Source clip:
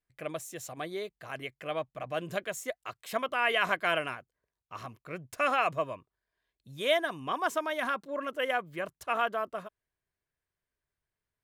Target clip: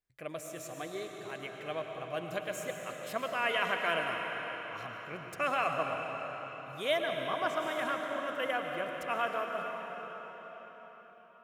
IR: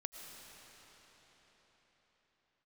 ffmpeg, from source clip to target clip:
-filter_complex "[1:a]atrim=start_sample=2205[a];[0:a][a]afir=irnorm=-1:irlink=0,asettb=1/sr,asplit=3[b][c][d];[b]atrim=end=6.994[e];[c]atrim=start=6.99:end=7.56,asetpts=PTS-STARTPTS,afade=t=in:d=0.004:c=qsin,afade=t=out:st=0.566:d=0.004:c=qsin,acrossover=split=5400[f][g];[g]acompressor=threshold=-58dB:ratio=4:attack=1:release=60[h];[f][h]amix=inputs=2:normalize=0[i];[d]atrim=start=7.556[j];[e][i]acrossfade=d=0.004:c1=hsin:c2=qsin[k];[k][j]acrossfade=d=0.004:c1=qsin:c2=hsin"

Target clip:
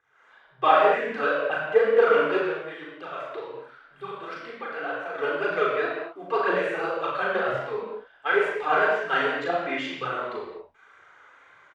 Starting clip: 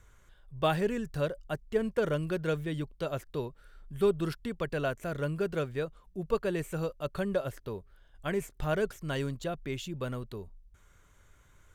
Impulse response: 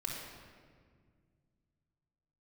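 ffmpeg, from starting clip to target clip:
-filter_complex "[0:a]aphaser=in_gain=1:out_gain=1:delay=4.8:decay=0.73:speed=2:type=triangular,asettb=1/sr,asplit=3[a][b][c];[a]atrim=end=2.384[d];[b]atrim=start=2.38:end=5.15,asetpts=PTS-STARTPTS,afade=t=in:d=0.004:c=qsin,afade=t=out:st=2.766:d=0.004:c=qsin,acompressor=threshold=-41dB:ratio=2.5[e];[c]atrim=start=5.146[f];[d][e]acrossfade=d=0.004:c1=hsin:c2=qsin[g];[g][f]acrossfade=d=0.004:c1=qsin:c2=hsin,highpass=720,lowpass=2.1k,dynaudnorm=f=120:g=3:m=14dB,asplit=2[h][i];[i]adelay=38,volume=-3dB[j];[h][j]amix=inputs=2:normalize=0[k];[1:a]atrim=start_sample=2205,afade=t=out:st=0.29:d=0.01,atrim=end_sample=13230[l];[k][l]afir=irnorm=-1:irlink=0,volume=-3dB"

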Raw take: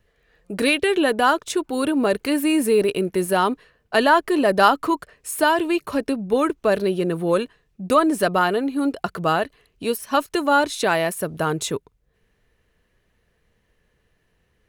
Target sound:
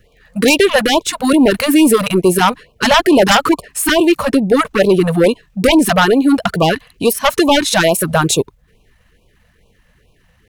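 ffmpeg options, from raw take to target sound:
-af "atempo=1.4,aeval=exprs='0.891*sin(PI/2*4.47*val(0)/0.891)':c=same,afftfilt=real='re*(1-between(b*sr/1024,310*pow(1700/310,0.5+0.5*sin(2*PI*2.3*pts/sr))/1.41,310*pow(1700/310,0.5+0.5*sin(2*PI*2.3*pts/sr))*1.41))':imag='im*(1-between(b*sr/1024,310*pow(1700/310,0.5+0.5*sin(2*PI*2.3*pts/sr))/1.41,310*pow(1700/310,0.5+0.5*sin(2*PI*2.3*pts/sr))*1.41))':win_size=1024:overlap=0.75,volume=-4dB"

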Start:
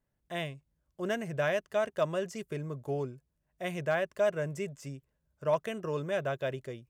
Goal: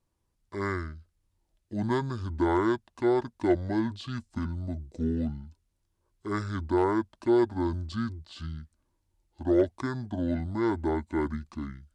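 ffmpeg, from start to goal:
-af "asetrate=25442,aresample=44100,volume=4dB"

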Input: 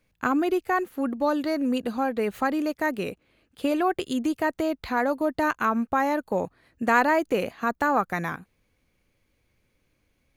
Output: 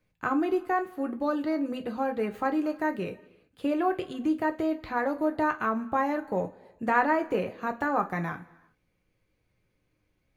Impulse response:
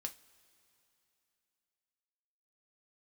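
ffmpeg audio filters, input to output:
-filter_complex "[0:a]highshelf=f=2.9k:g=-7,acrossover=split=810|3500[a][b][c];[c]acompressor=threshold=-54dB:ratio=6[d];[a][b][d]amix=inputs=3:normalize=0[e];[1:a]atrim=start_sample=2205,afade=t=out:st=0.44:d=0.01,atrim=end_sample=19845[f];[e][f]afir=irnorm=-1:irlink=0"

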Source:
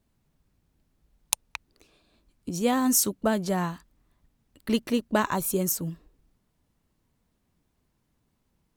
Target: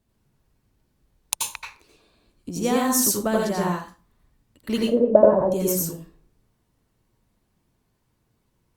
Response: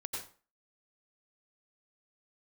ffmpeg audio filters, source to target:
-filter_complex "[0:a]asettb=1/sr,asplit=3[a][b][c];[a]atrim=end=4.814[d];[b]atrim=start=4.81:end=5.52,asetpts=PTS-STARTPTS,afade=t=in:d=0.004:c=qsin,afade=t=out:st=0.706:d=0.004:c=qsin,lowpass=f=590:t=q:w=6.5[e];[c]atrim=start=5.516[f];[d][e]acrossfade=d=0.004:c1=hsin:c2=qsin[g];[g][f]acrossfade=d=0.004:c1=qsin:c2=hsin[h];[1:a]atrim=start_sample=2205,asetrate=48510,aresample=44100[i];[h][i]afir=irnorm=-1:irlink=0,volume=4dB" -ar 48000 -c:a libopus -b:a 64k

